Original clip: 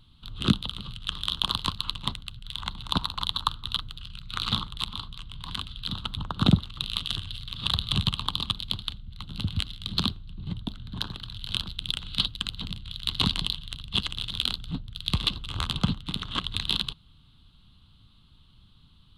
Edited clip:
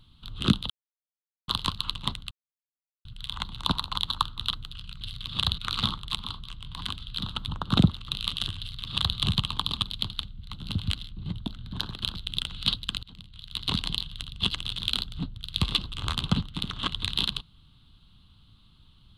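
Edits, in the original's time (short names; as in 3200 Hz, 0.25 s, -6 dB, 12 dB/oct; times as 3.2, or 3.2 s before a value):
0.7–1.48 mute
2.31 insert silence 0.74 s
7.28–7.85 copy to 4.27
9.8–10.32 cut
11.24–11.55 cut
12.55–13.63 fade in, from -17 dB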